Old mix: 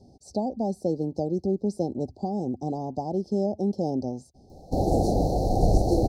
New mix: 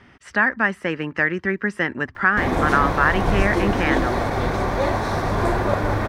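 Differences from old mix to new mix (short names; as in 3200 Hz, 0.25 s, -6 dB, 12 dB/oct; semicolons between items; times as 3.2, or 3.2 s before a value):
background: entry -2.35 s; master: remove Chebyshev band-stop 790–4200 Hz, order 5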